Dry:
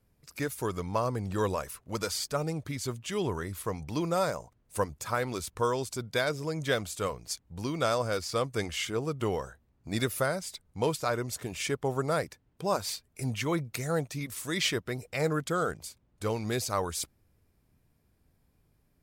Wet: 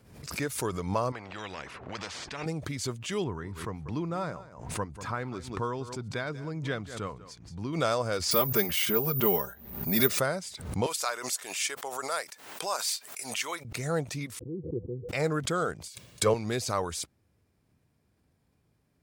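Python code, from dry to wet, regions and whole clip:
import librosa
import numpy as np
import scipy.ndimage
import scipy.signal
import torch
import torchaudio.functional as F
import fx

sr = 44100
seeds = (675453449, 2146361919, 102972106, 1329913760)

y = fx.chain(x, sr, fx.lowpass(hz=1800.0, slope=12),
    fx.spectral_comp(ratio=4.0), at=(1.12, 2.46))
y = fx.chain(y, sr, fx.lowpass(hz=1300.0, slope=6),
    fx.peak_eq(hz=550.0, db=-7.5, octaves=0.94),
    fx.echo_single(ms=191, db=-16.5), at=(3.24, 7.73))
y = fx.chain(y, sr, fx.comb(ms=5.0, depth=0.93),
    fx.resample_bad(factor=3, down='filtered', up='zero_stuff'), at=(8.31, 10.19))
y = fx.chain(y, sr, fx.highpass(hz=810.0, slope=12),
    fx.high_shelf(hz=6100.0, db=11.5), at=(10.86, 13.65))
y = fx.chain(y, sr, fx.cheby_ripple(hz=510.0, ripple_db=6),
    fx.band_widen(depth_pct=40), at=(14.39, 15.09))
y = fx.chain(y, sr, fx.highpass(hz=100.0, slope=12),
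    fx.comb(ms=1.8, depth=0.44),
    fx.band_widen(depth_pct=70), at=(15.88, 16.34))
y = scipy.signal.sosfilt(scipy.signal.butter(2, 76.0, 'highpass', fs=sr, output='sos'), y)
y = fx.peak_eq(y, sr, hz=13000.0, db=-9.5, octaves=0.47)
y = fx.pre_swell(y, sr, db_per_s=76.0)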